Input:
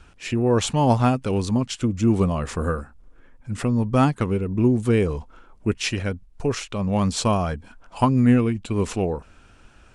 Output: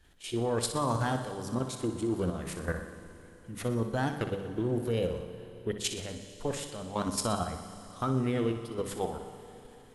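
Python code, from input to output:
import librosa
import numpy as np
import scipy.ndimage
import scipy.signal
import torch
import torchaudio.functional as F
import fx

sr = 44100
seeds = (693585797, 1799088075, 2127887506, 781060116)

p1 = fx.high_shelf(x, sr, hz=4900.0, db=6.5)
p2 = fx.hum_notches(p1, sr, base_hz=50, count=5)
p3 = fx.level_steps(p2, sr, step_db=11)
p4 = fx.formant_shift(p3, sr, semitones=4)
p5 = p4 + fx.echo_feedback(p4, sr, ms=61, feedback_pct=58, wet_db=-10.0, dry=0)
p6 = fx.rev_schroeder(p5, sr, rt60_s=4.0, comb_ms=30, drr_db=11.0)
y = p6 * librosa.db_to_amplitude(-7.0)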